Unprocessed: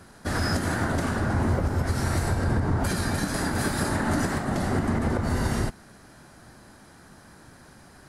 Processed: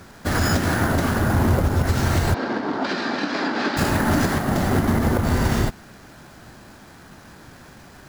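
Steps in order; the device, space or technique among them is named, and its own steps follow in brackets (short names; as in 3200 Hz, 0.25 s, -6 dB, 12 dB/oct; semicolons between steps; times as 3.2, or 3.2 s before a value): early companding sampler (sample-rate reducer 12000 Hz, jitter 0%; companded quantiser 6-bit); 2.34–3.77 Chebyshev band-pass 250–4700 Hz, order 3; gain +5.5 dB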